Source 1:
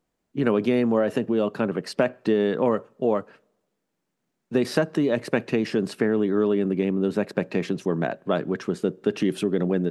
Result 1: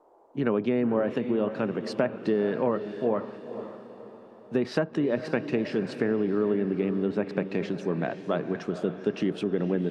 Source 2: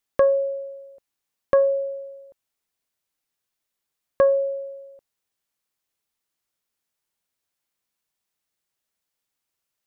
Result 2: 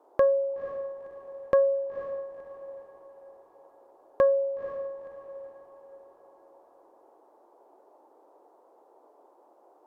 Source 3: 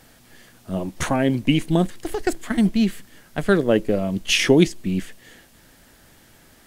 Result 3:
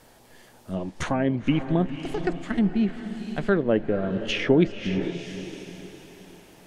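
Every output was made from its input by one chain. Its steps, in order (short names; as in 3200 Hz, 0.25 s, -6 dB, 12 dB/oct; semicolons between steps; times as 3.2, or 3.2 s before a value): diffused feedback echo 0.501 s, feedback 42%, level -10.5 dB; band noise 320–950 Hz -55 dBFS; treble ducked by the level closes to 2200 Hz, closed at -16.5 dBFS; gain -4 dB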